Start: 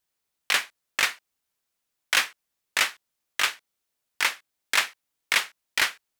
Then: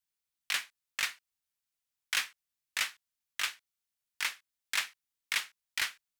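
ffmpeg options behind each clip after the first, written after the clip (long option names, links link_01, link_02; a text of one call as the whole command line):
ffmpeg -i in.wav -af "equalizer=frequency=470:width=0.53:gain=-10,volume=-7.5dB" out.wav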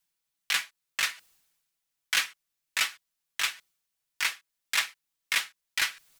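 ffmpeg -i in.wav -af "aecho=1:1:6.1:0.65,areverse,acompressor=mode=upward:threshold=-49dB:ratio=2.5,areverse,volume=3.5dB" out.wav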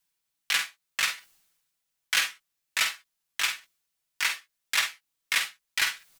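ffmpeg -i in.wav -af "aecho=1:1:49|66:0.422|0.168,volume=1dB" out.wav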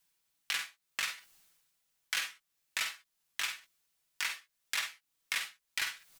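ffmpeg -i in.wav -af "acompressor=threshold=-43dB:ratio=2,volume=2.5dB" out.wav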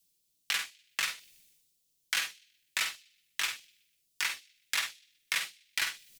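ffmpeg -i in.wav -filter_complex "[0:a]acrossover=split=250|570|2900[link_01][link_02][link_03][link_04];[link_03]aeval=exprs='sgn(val(0))*max(abs(val(0))-0.00178,0)':channel_layout=same[link_05];[link_04]asplit=2[link_06][link_07];[link_07]adelay=124,lowpass=frequency=4200:poles=1,volume=-18dB,asplit=2[link_08][link_09];[link_09]adelay=124,lowpass=frequency=4200:poles=1,volume=0.52,asplit=2[link_10][link_11];[link_11]adelay=124,lowpass=frequency=4200:poles=1,volume=0.52,asplit=2[link_12][link_13];[link_13]adelay=124,lowpass=frequency=4200:poles=1,volume=0.52[link_14];[link_06][link_08][link_10][link_12][link_14]amix=inputs=5:normalize=0[link_15];[link_01][link_02][link_05][link_15]amix=inputs=4:normalize=0,volume=3.5dB" out.wav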